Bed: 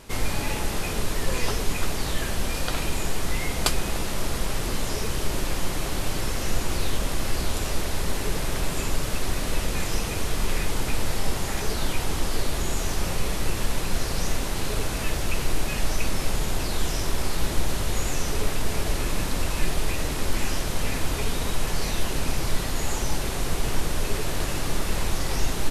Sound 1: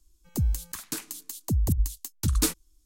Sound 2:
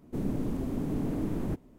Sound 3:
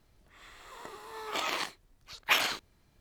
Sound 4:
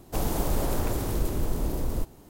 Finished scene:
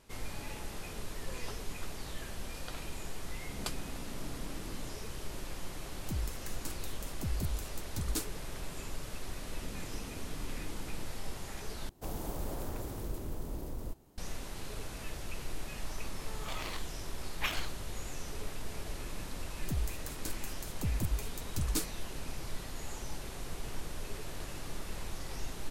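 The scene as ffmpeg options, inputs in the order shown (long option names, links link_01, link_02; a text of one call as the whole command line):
ffmpeg -i bed.wav -i cue0.wav -i cue1.wav -i cue2.wav -i cue3.wav -filter_complex "[2:a]asplit=2[link_01][link_02];[1:a]asplit=2[link_03][link_04];[0:a]volume=-15dB[link_05];[link_02]acompressor=threshold=-43dB:ratio=6:attack=3.2:release=140:knee=1:detection=peak[link_06];[link_05]asplit=2[link_07][link_08];[link_07]atrim=end=11.894[link_09];[4:a]atrim=end=2.29,asetpts=PTS-STARTPTS,volume=-11.5dB[link_10];[link_08]atrim=start=14.176[link_11];[link_01]atrim=end=1.78,asetpts=PTS-STARTPTS,volume=-17dB,afade=type=in:duration=0.004:curve=hsin,afade=type=out:start_time=1.776:duration=0.004:curve=hsin,adelay=3340[link_12];[link_03]atrim=end=2.85,asetpts=PTS-STARTPTS,volume=-11.5dB,afade=type=in:duration=0.004:curve=hsin,afade=type=out:start_time=2.846:duration=0.004:curve=hsin,adelay=252693S[link_13];[link_06]atrim=end=1.78,asetpts=PTS-STARTPTS,volume=-4dB,afade=type=in:duration=0.004:curve=hsin,afade=type=out:start_time=1.776:duration=0.004:curve=hsin,adelay=9490[link_14];[3:a]atrim=end=3,asetpts=PTS-STARTPTS,volume=-9.5dB,afade=type=in:duration=0.004:curve=hsin,afade=type=out:start_time=2.996:duration=0.004:curve=hsin,adelay=15130[link_15];[link_04]atrim=end=2.85,asetpts=PTS-STARTPTS,volume=-9.5dB,afade=type=in:duration=0.004:curve=hsin,afade=type=out:start_time=2.846:duration=0.004:curve=hsin,adelay=19330[link_16];[link_09][link_10]acrossfade=duration=0.004:curve1=hsin:curve2=hsin[link_17];[link_17][link_11]acrossfade=duration=0.004:curve1=hsin:curve2=hsin[link_18];[link_18][link_12][link_13][link_14][link_15][link_16]amix=inputs=6:normalize=0" out.wav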